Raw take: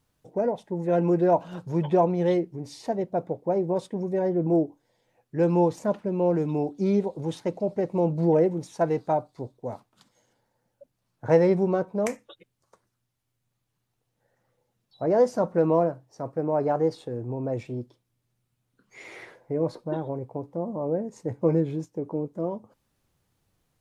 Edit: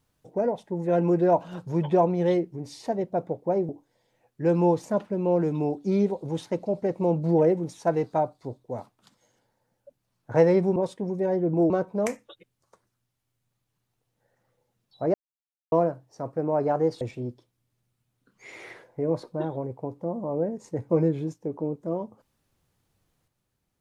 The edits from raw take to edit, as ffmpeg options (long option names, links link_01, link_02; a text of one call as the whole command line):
ffmpeg -i in.wav -filter_complex "[0:a]asplit=7[link_01][link_02][link_03][link_04][link_05][link_06][link_07];[link_01]atrim=end=3.692[link_08];[link_02]atrim=start=4.628:end=11.702[link_09];[link_03]atrim=start=3.688:end=4.632[link_10];[link_04]atrim=start=11.698:end=15.14,asetpts=PTS-STARTPTS,afade=type=out:start_time=3.438:duration=0.004:curve=hsin[link_11];[link_05]atrim=start=15.14:end=15.72,asetpts=PTS-STARTPTS,volume=0[link_12];[link_06]atrim=start=15.72:end=17.012,asetpts=PTS-STARTPTS,afade=type=in:duration=0.004:curve=hsin[link_13];[link_07]atrim=start=17.528[link_14];[link_08][link_09]acrossfade=duration=0.004:curve1=hsin:curve2=hsin[link_15];[link_15][link_10]acrossfade=duration=0.004:curve1=hsin:curve2=hsin[link_16];[link_11][link_12][link_13]concat=n=3:v=0:a=1[link_17];[link_16][link_17]acrossfade=duration=0.004:curve1=hsin:curve2=hsin[link_18];[link_18][link_14]acrossfade=duration=0.004:curve1=hsin:curve2=hsin" out.wav